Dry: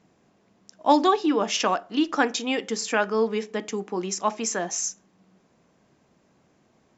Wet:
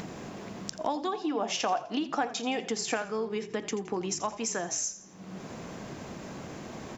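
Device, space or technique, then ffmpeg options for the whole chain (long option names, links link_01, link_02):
upward and downward compression: -filter_complex "[0:a]acompressor=mode=upward:threshold=-33dB:ratio=2.5,acompressor=threshold=-35dB:ratio=8,asettb=1/sr,asplit=3[link_01][link_02][link_03];[link_01]atrim=end=1.154[link_04];[link_02]atrim=start=1.15:end=2.96,asetpts=PTS-STARTPTS,afade=type=in:duration=0.004:curve=qsin,afade=type=out:start_time=1.806:duration=0.004:curve=qsin,equalizer=frequency=740:width=3.5:gain=10[link_05];[link_03]atrim=start=2.956[link_06];[link_04][link_05]acrossfade=duration=0.004:curve1=hsin:curve2=qsin[link_07];[link_07][link_06]acrossfade=duration=0.004:curve1=qsin:curve2=hsin,asplit=5[link_08][link_09][link_10][link_11][link_12];[link_09]adelay=84,afreqshift=-39,volume=-14.5dB[link_13];[link_10]adelay=168,afreqshift=-78,volume=-22dB[link_14];[link_11]adelay=252,afreqshift=-117,volume=-29.6dB[link_15];[link_12]adelay=336,afreqshift=-156,volume=-37.1dB[link_16];[link_08][link_13][link_14][link_15][link_16]amix=inputs=5:normalize=0,volume=6dB"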